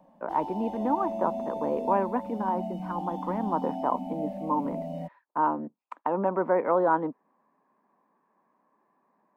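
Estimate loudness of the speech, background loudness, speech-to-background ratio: −29.5 LKFS, −36.0 LKFS, 6.5 dB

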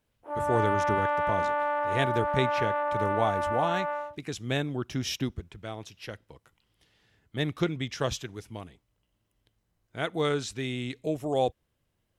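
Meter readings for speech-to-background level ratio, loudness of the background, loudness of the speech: −3.0 dB, −29.0 LKFS, −32.0 LKFS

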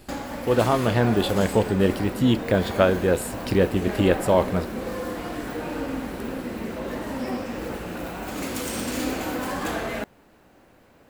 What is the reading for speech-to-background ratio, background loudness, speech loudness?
8.0 dB, −30.5 LKFS, −22.5 LKFS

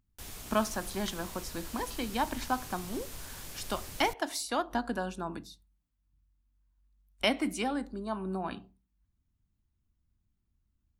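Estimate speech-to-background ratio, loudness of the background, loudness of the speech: 9.5 dB, −43.5 LKFS, −34.0 LKFS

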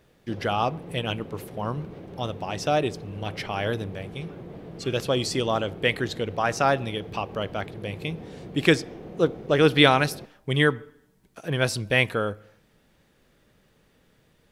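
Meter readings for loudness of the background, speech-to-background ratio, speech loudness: −41.5 LKFS, 16.0 dB, −25.5 LKFS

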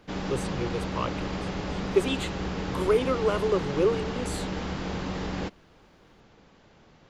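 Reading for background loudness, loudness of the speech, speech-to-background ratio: −32.5 LKFS, −29.0 LKFS, 3.5 dB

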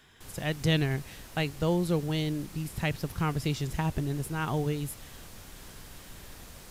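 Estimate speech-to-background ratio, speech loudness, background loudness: 16.5 dB, −31.0 LKFS, −47.5 LKFS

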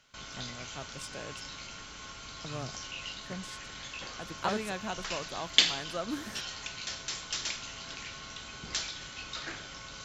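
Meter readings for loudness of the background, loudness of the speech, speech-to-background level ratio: −36.0 LKFS, −40.0 LKFS, −4.0 dB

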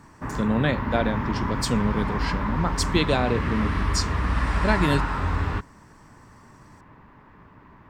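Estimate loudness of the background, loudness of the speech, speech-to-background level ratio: −27.5 LKFS, −26.5 LKFS, 1.0 dB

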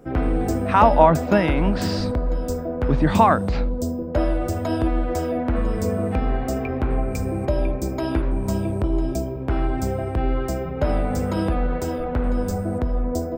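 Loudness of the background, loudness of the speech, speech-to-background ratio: −24.5 LKFS, −19.0 LKFS, 5.5 dB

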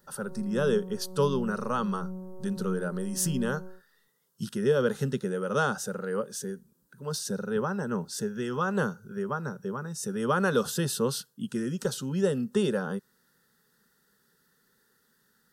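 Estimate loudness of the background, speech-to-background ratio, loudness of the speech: −40.5 LKFS, 10.5 dB, −30.0 LKFS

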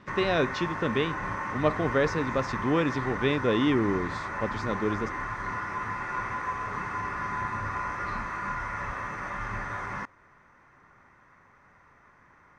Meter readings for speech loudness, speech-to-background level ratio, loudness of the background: −28.5 LKFS, 4.5 dB, −33.0 LKFS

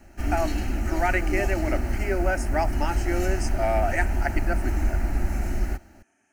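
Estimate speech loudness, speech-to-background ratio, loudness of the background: −29.0 LKFS, 0.0 dB, −29.0 LKFS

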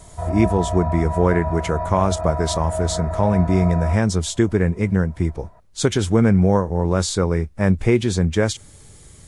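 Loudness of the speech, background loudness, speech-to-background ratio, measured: −20.0 LKFS, −27.0 LKFS, 7.0 dB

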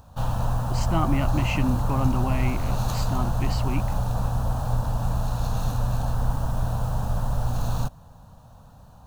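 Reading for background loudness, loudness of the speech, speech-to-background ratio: −27.5 LKFS, −29.0 LKFS, −1.5 dB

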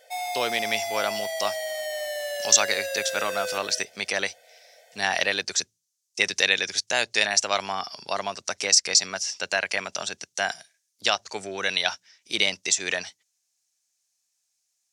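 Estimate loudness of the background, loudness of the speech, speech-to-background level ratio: −30.5 LKFS, −24.5 LKFS, 6.0 dB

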